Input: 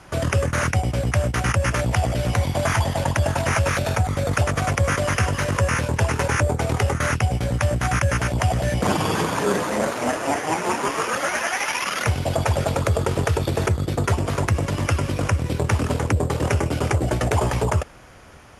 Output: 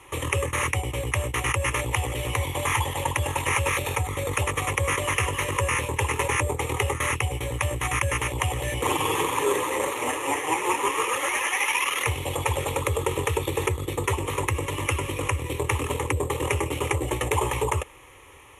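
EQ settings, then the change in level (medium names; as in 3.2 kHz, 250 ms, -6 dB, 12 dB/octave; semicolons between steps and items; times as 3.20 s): tilt EQ +1.5 dB/octave; static phaser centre 1 kHz, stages 8; +1.0 dB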